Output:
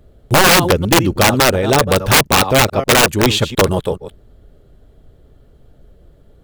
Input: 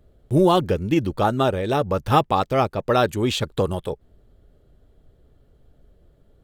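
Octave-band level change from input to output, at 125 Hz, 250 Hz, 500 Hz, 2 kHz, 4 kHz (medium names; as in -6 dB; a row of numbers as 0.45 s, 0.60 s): +6.5 dB, +5.5 dB, +6.0 dB, +17.0 dB, +15.0 dB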